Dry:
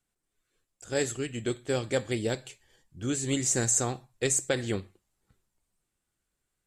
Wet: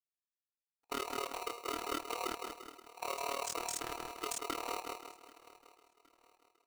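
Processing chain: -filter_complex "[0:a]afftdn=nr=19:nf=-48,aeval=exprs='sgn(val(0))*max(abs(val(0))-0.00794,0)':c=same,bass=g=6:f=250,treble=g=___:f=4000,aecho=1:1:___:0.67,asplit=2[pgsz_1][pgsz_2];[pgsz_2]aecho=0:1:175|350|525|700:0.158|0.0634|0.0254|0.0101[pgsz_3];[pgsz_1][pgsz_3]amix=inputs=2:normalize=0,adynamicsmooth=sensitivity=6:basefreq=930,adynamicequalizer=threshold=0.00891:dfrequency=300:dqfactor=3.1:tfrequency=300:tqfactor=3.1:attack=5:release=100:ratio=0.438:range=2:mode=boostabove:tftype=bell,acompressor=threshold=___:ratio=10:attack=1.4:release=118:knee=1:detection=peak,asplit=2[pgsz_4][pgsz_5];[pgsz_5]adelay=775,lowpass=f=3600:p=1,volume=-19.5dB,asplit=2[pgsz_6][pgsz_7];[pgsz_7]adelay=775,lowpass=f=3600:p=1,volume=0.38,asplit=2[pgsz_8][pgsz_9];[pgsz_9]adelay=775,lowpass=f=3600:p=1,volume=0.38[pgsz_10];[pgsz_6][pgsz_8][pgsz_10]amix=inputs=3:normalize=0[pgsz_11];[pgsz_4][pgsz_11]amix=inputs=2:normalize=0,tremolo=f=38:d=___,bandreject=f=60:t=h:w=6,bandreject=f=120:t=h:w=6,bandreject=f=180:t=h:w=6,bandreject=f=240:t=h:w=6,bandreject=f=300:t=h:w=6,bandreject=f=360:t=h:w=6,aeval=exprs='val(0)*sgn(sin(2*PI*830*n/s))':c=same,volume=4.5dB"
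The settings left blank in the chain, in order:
0, 2.2, -34dB, 0.974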